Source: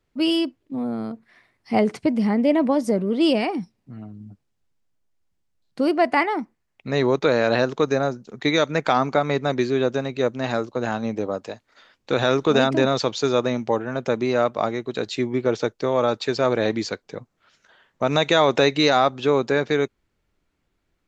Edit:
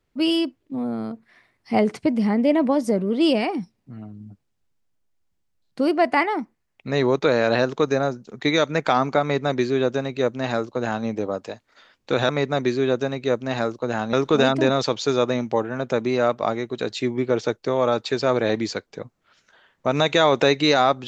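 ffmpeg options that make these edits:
ffmpeg -i in.wav -filter_complex "[0:a]asplit=3[link_01][link_02][link_03];[link_01]atrim=end=12.292[link_04];[link_02]atrim=start=9.218:end=11.062[link_05];[link_03]atrim=start=12.288[link_06];[link_04][link_05]acrossfade=duration=0.004:curve1=hsin:curve2=hsin[link_07];[link_07][link_06]acrossfade=duration=0.004:curve1=hsin:curve2=hsin" out.wav

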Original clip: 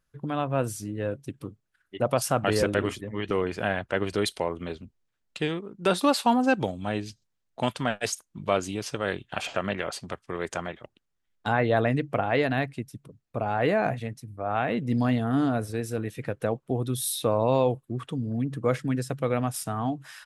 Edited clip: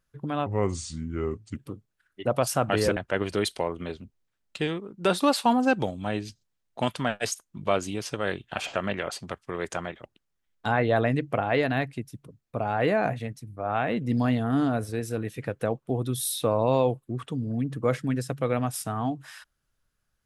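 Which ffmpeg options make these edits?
ffmpeg -i in.wav -filter_complex "[0:a]asplit=4[link_01][link_02][link_03][link_04];[link_01]atrim=end=0.464[link_05];[link_02]atrim=start=0.46:end=1.31,asetpts=PTS-STARTPTS,asetrate=33957,aresample=44100[link_06];[link_03]atrim=start=1.306:end=2.712[link_07];[link_04]atrim=start=3.768[link_08];[link_05][link_06]acrossfade=duration=0.004:curve1=hsin:curve2=hsin[link_09];[link_09][link_07]acrossfade=duration=0.004:curve1=hsin:curve2=hsin[link_10];[link_10][link_08]acrossfade=duration=0.004:curve1=hsin:curve2=hsin" out.wav

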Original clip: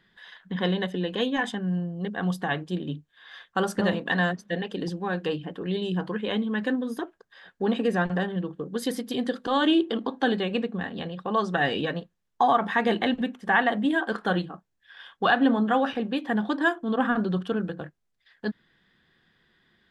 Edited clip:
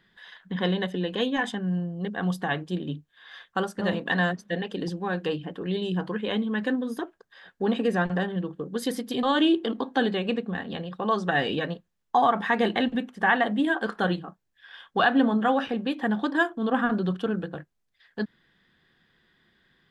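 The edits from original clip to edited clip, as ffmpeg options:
ffmpeg -i in.wav -filter_complex "[0:a]asplit=3[link_01][link_02][link_03];[link_01]atrim=end=3.74,asetpts=PTS-STARTPTS,afade=type=out:start_time=3.49:duration=0.25:curve=qsin:silence=0.251189[link_04];[link_02]atrim=start=3.74:end=9.232,asetpts=PTS-STARTPTS,afade=type=in:duration=0.25:curve=qsin:silence=0.251189[link_05];[link_03]atrim=start=9.488[link_06];[link_04][link_05]concat=n=2:v=0:a=1[link_07];[link_07][link_06]acrossfade=duration=0.004:curve1=hsin:curve2=hsin" out.wav

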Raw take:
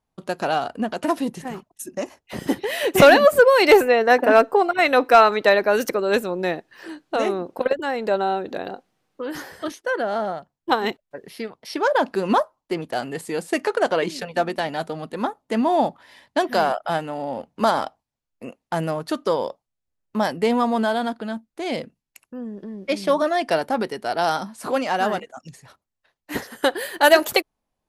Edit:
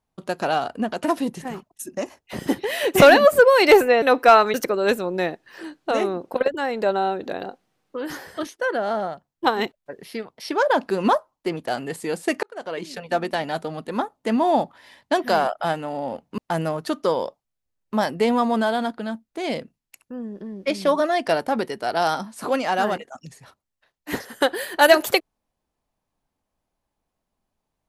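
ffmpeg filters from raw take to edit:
ffmpeg -i in.wav -filter_complex "[0:a]asplit=5[link_01][link_02][link_03][link_04][link_05];[link_01]atrim=end=4.022[link_06];[link_02]atrim=start=4.878:end=5.402[link_07];[link_03]atrim=start=5.788:end=13.68,asetpts=PTS-STARTPTS,afade=type=out:start_time=7.888:duration=0.004:curve=hsin[link_08];[link_04]atrim=start=13.68:end=17.632,asetpts=PTS-STARTPTS,afade=type=in:duration=0.82[link_09];[link_05]atrim=start=18.598[link_10];[link_06][link_07]acrossfade=duration=0.004:curve1=hsin:curve2=hsin[link_11];[link_08][link_09]concat=n=2:v=0:a=1[link_12];[link_11][link_12]acrossfade=duration=0.004:curve1=hsin:curve2=hsin[link_13];[link_13][link_10]acrossfade=duration=0.004:curve1=hsin:curve2=hsin" out.wav

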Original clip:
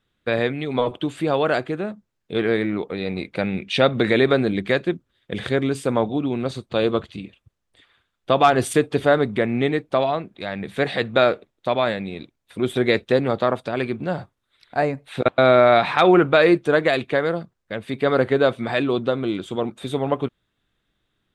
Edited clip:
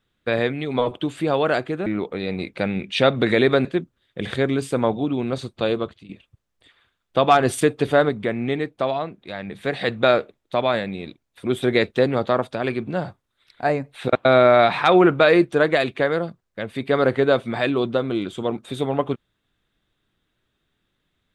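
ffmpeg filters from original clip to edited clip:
ffmpeg -i in.wav -filter_complex "[0:a]asplit=6[link_01][link_02][link_03][link_04][link_05][link_06];[link_01]atrim=end=1.862[link_07];[link_02]atrim=start=2.638:end=4.432[link_08];[link_03]atrim=start=4.778:end=7.22,asetpts=PTS-STARTPTS,afade=type=out:start_time=1.932:duration=0.51:silence=0.188365[link_09];[link_04]atrim=start=7.22:end=9.222,asetpts=PTS-STARTPTS,afade=type=in:duration=0.004:curve=hsin:silence=0.188365[link_10];[link_05]atrim=start=9.218:end=10.942,asetpts=PTS-STARTPTS,volume=-3dB[link_11];[link_06]atrim=start=10.938[link_12];[link_07][link_08]acrossfade=duration=0.004:curve1=hsin:curve2=hsin[link_13];[link_09][link_10]concat=n=2:v=0:a=1[link_14];[link_13][link_14]acrossfade=duration=0.004:curve1=hsin:curve2=hsin[link_15];[link_15][link_11]acrossfade=duration=0.004:curve1=hsin:curve2=hsin[link_16];[link_16][link_12]acrossfade=duration=0.004:curve1=hsin:curve2=hsin" out.wav

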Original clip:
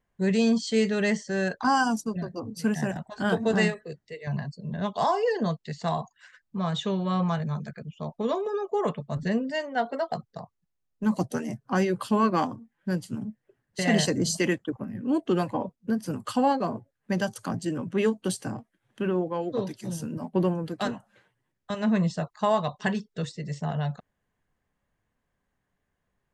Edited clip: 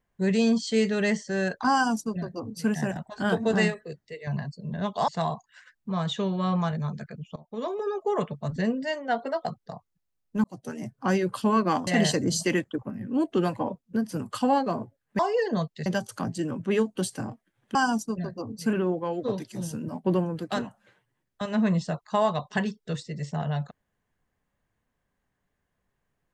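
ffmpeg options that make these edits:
ffmpeg -i in.wav -filter_complex "[0:a]asplit=9[link_01][link_02][link_03][link_04][link_05][link_06][link_07][link_08][link_09];[link_01]atrim=end=5.082[link_10];[link_02]atrim=start=5.748:end=8.03,asetpts=PTS-STARTPTS,afade=type=out:start_time=2.278:duration=0.004:curve=hsin:silence=0.0841395[link_11];[link_03]atrim=start=8.03:end=11.11,asetpts=PTS-STARTPTS,afade=type=in:duration=0.49:silence=0.0841395,afade=type=out:start_time=3.076:duration=0.004:curve=hsin[link_12];[link_04]atrim=start=11.11:end=12.542,asetpts=PTS-STARTPTS,afade=type=in:duration=0.52[link_13];[link_05]atrim=start=13.808:end=17.132[link_14];[link_06]atrim=start=5.078:end=5.752[link_15];[link_07]atrim=start=17.128:end=19.022[link_16];[link_08]atrim=start=1.728:end=2.712[link_17];[link_09]atrim=start=19.018[link_18];[link_11][link_12][link_13]concat=n=3:v=0:a=1[link_19];[link_10][link_19]acrossfade=duration=0.004:curve1=hsin:curve2=hsin[link_20];[link_20][link_14]acrossfade=duration=0.004:curve1=hsin:curve2=hsin[link_21];[link_21][link_15]acrossfade=duration=0.004:curve1=hsin:curve2=hsin[link_22];[link_22][link_16]acrossfade=duration=0.004:curve1=hsin:curve2=hsin[link_23];[link_23][link_17]acrossfade=duration=0.004:curve1=hsin:curve2=hsin[link_24];[link_24][link_18]acrossfade=duration=0.004:curve1=hsin:curve2=hsin" out.wav

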